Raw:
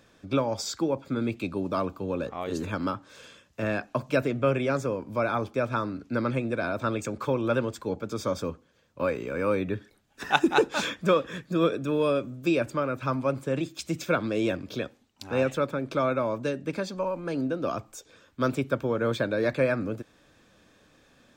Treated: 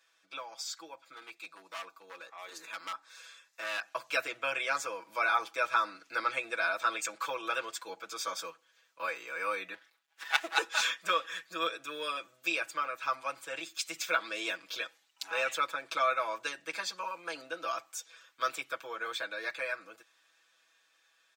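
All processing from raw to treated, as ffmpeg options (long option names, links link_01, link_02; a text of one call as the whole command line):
ffmpeg -i in.wav -filter_complex "[0:a]asettb=1/sr,asplit=3[link_01][link_02][link_03];[link_01]atrim=end=1.134[link_04];[link_02]atrim=start=1.13:end=3.83,asetpts=PTS-STARTPTS,afade=type=in:duration=0.004:curve=qsin,afade=type=out:start_time=2.696:duration=0.004:curve=qsin,lowshelf=frequency=180:gain=-7,bandreject=frequency=3000:width=5.7,aeval=exprs='0.0631*(abs(mod(val(0)/0.0631+3,4)-2)-1)':channel_layout=same[link_05];[link_03]atrim=start=3.826[link_06];[link_04][link_05]acrossfade=duration=0.004:curve1=hsin:curve2=qsin[link_07];[link_07][link_06]acrossfade=duration=0.004:curve1=qsin:curve2=hsin,asettb=1/sr,asplit=3[link_08][link_09][link_10];[link_08]atrim=end=9.744[link_11];[link_09]atrim=start=9.74:end=10.57,asetpts=PTS-STARTPTS,afade=type=in:duration=0.004:curve=qsin,afade=type=out:start_time=0.826:duration=0.004:curve=qsin,equalizer=frequency=8700:width=0.51:gain=-7.5,aeval=exprs='max(val(0),0)':channel_layout=same[link_12];[link_10]atrim=start=10.566[link_13];[link_11][link_12]acrossfade=duration=0.004:curve1=hsin:curve2=qsin[link_14];[link_14][link_13]acrossfade=duration=0.004:curve1=qsin:curve2=hsin,highpass=1300,aecho=1:1:6.1:0.96,dynaudnorm=framelen=730:gausssize=11:maxgain=13.5dB,volume=-8.5dB" out.wav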